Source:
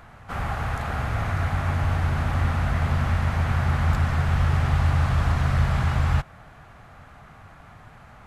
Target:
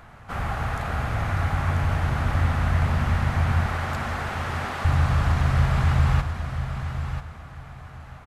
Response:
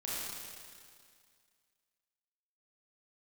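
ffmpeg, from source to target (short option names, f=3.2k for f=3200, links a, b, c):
-filter_complex "[0:a]asettb=1/sr,asplit=3[a][b][c];[a]atrim=end=3.664[d];[b]atrim=start=3.66:end=4.85,asetpts=PTS-STARTPTS,afade=t=in:d=0.004:c=qsin,afade=t=out:st=1.186:d=0.004:c=qsin,highpass=f=250:w=0.5412,highpass=f=250:w=1.3066[e];[c]atrim=start=4.846[f];[d][e]acrossfade=d=0.004:c1=hsin:c2=qsin[g];[g][f]acrossfade=d=0.004:c1=qsin:c2=hsin,aecho=1:1:989|1978|2967:0.355|0.0745|0.0156,asplit=2[h][i];[1:a]atrim=start_sample=2205,adelay=52[j];[i][j]afir=irnorm=-1:irlink=0,volume=-14.5dB[k];[h][k]amix=inputs=2:normalize=0"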